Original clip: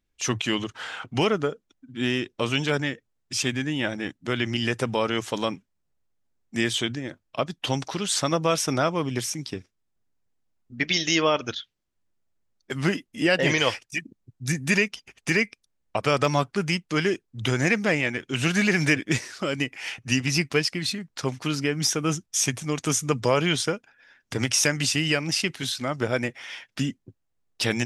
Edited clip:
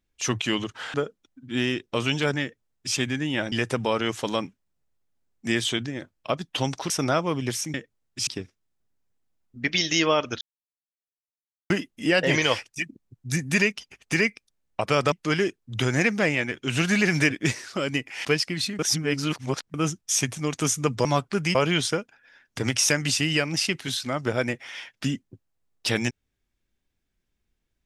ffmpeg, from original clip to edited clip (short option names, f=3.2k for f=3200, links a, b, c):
-filter_complex "[0:a]asplit=14[a][b][c][d][e][f][g][h][i][j][k][l][m][n];[a]atrim=end=0.942[o];[b]atrim=start=1.398:end=3.982[p];[c]atrim=start=4.608:end=7.992[q];[d]atrim=start=8.588:end=9.432[r];[e]atrim=start=2.878:end=3.412[s];[f]atrim=start=9.428:end=11.57,asetpts=PTS-STARTPTS,afade=t=out:st=2.138:d=0.004:c=hsin[t];[g]atrim=start=11.57:end=12.86,asetpts=PTS-STARTPTS,volume=0[u];[h]atrim=start=12.86:end=16.282,asetpts=PTS-STARTPTS,afade=t=in:d=0.004:c=hsin[v];[i]atrim=start=16.778:end=19.912[w];[j]atrim=start=20.498:end=21.042[x];[k]atrim=start=21.038:end=21.992,asetpts=PTS-STARTPTS,areverse[y];[l]atrim=start=21.988:end=23.302[z];[m]atrim=start=16.278:end=16.782[aa];[n]atrim=start=23.298[ab];[o][p]acrossfade=d=0.004:c1=hsin:c2=hsin[ac];[ac][q]acrossfade=d=0.004:c1=hsin:c2=hsin[ad];[ad][r]acrossfade=d=0.004:c1=hsin:c2=hsin[ae];[ae][s]acrossfade=d=0.004:c1=hsin:c2=hsin[af];[t][u][v]concat=n=3:v=0:a=1[ag];[af][ag]acrossfade=d=0.004:c1=hsin:c2=hsin[ah];[ah][w]acrossfade=d=0.004:c1=hsin:c2=hsin[ai];[ai][x]acrossfade=d=0.004:c1=hsin:c2=hsin[aj];[aj][y]acrossfade=d=0.004:c1=hsin:c2=hsin[ak];[ak][z]acrossfade=d=0.004:c1=hsin:c2=hsin[al];[al][aa]acrossfade=d=0.004:c1=hsin:c2=hsin[am];[am][ab]acrossfade=d=0.004:c1=hsin:c2=hsin"